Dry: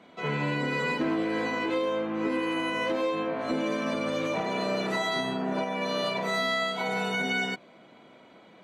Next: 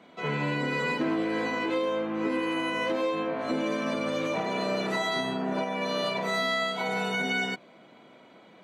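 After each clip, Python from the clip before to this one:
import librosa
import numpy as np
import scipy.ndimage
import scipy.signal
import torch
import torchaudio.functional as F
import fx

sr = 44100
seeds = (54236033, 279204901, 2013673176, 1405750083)

y = scipy.signal.sosfilt(scipy.signal.butter(2, 87.0, 'highpass', fs=sr, output='sos'), x)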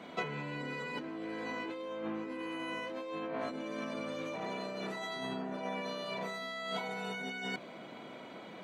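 y = fx.over_compress(x, sr, threshold_db=-37.0, ratio=-1.0)
y = F.gain(torch.from_numpy(y), -2.5).numpy()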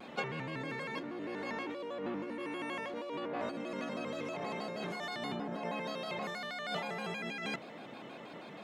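y = fx.vibrato_shape(x, sr, shape='square', rate_hz=6.3, depth_cents=160.0)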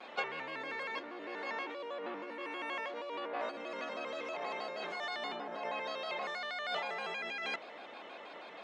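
y = fx.bandpass_edges(x, sr, low_hz=520.0, high_hz=5300.0)
y = F.gain(torch.from_numpy(y), 2.0).numpy()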